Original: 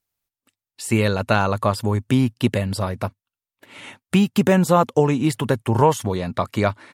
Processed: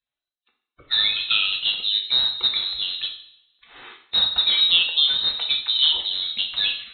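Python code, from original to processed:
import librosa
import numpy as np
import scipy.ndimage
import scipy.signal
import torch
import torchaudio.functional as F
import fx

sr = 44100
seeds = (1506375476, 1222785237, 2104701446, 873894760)

y = fx.spec_quant(x, sr, step_db=30)
y = fx.freq_invert(y, sr, carrier_hz=4000)
y = fx.rev_double_slope(y, sr, seeds[0], early_s=0.57, late_s=1.7, knee_db=-24, drr_db=1.0)
y = F.gain(torch.from_numpy(y), -4.5).numpy()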